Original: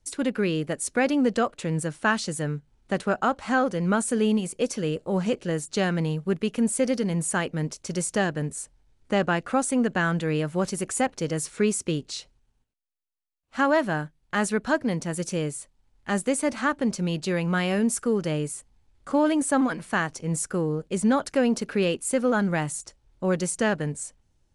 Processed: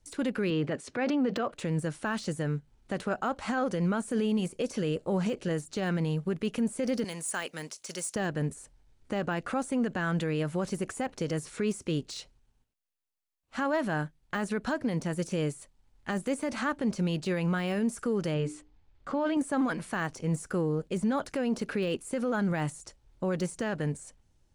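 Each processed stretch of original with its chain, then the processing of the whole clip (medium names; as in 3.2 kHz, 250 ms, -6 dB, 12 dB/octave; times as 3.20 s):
0.50–1.52 s: transient shaper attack -10 dB, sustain +7 dB + band-pass 110–3700 Hz + band-stop 200 Hz, Q 6
7.04–8.16 s: high-pass 1.1 kHz 6 dB/octave + treble shelf 3.6 kHz +11.5 dB
18.34–19.37 s: low-pass 4.3 kHz + hum notches 60/120/180/240/300/360/420/480 Hz
whole clip: de-esser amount 90%; peak limiter -21 dBFS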